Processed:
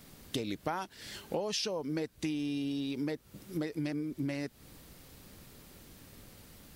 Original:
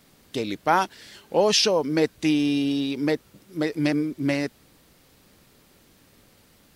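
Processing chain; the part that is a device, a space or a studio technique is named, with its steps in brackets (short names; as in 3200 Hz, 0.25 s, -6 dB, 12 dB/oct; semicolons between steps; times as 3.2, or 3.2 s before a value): ASMR close-microphone chain (low shelf 160 Hz +7.5 dB; compressor 10:1, threshold -32 dBFS, peak gain reduction 18 dB; high shelf 8100 Hz +5 dB)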